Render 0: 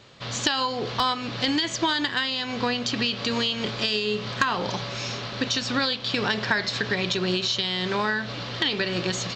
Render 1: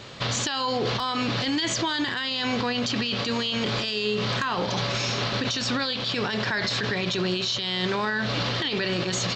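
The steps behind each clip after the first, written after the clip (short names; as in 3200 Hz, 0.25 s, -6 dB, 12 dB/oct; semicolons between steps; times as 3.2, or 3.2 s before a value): in parallel at -3 dB: negative-ratio compressor -32 dBFS; on the sum: limiter -20 dBFS, peak gain reduction 11 dB; gain +2.5 dB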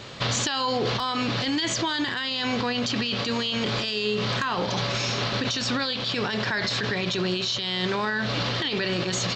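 vocal rider 2 s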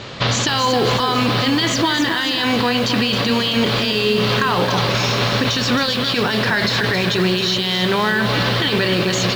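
air absorption 58 m; lo-fi delay 0.268 s, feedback 55%, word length 7-bit, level -7 dB; gain +8.5 dB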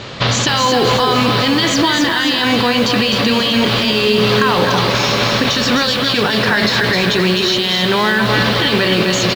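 echo 0.254 s -7 dB; gain +3 dB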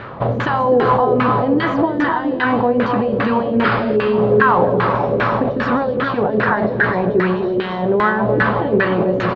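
painted sound noise, 3.64–3.97, 1200–5200 Hz -12 dBFS; LFO low-pass saw down 2.5 Hz 420–1700 Hz; gain -3 dB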